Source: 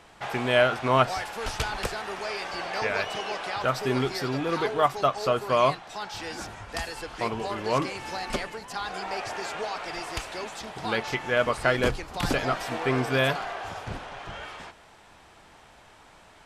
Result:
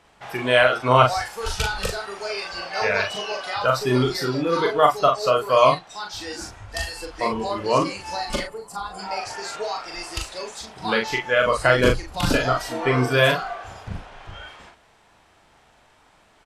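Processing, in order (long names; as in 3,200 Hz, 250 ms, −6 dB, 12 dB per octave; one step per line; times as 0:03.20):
noise reduction from a noise print of the clip's start 10 dB
gain on a spectral selection 0:08.43–0:08.99, 1,400–7,000 Hz −10 dB
double-tracking delay 40 ms −4 dB
level +5 dB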